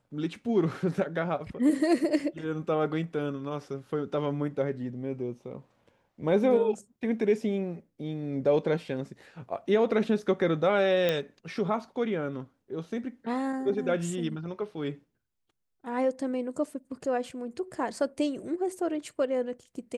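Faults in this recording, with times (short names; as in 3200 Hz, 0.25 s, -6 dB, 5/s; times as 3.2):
11.09 pop -14 dBFS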